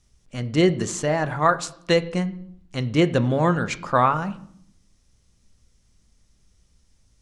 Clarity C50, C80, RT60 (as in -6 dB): 17.0 dB, 20.0 dB, 0.65 s